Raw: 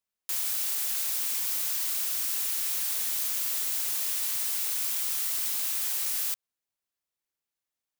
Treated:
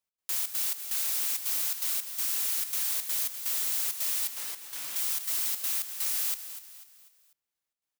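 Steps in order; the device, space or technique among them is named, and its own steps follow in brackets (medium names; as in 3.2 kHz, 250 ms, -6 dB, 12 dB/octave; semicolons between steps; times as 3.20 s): 4.27–4.96 s: treble shelf 4.1 kHz -8.5 dB; trance gate with a delay (trance gate "x.xxx.xx..xxxx" 165 bpm -12 dB; feedback delay 247 ms, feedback 42%, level -12 dB)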